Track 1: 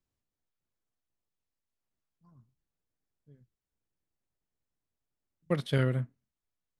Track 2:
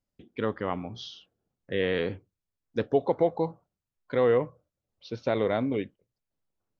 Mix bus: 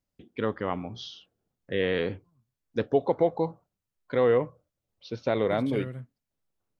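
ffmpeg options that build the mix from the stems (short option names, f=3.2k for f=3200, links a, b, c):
-filter_complex "[0:a]volume=-8.5dB[a];[1:a]volume=0.5dB[b];[a][b]amix=inputs=2:normalize=0"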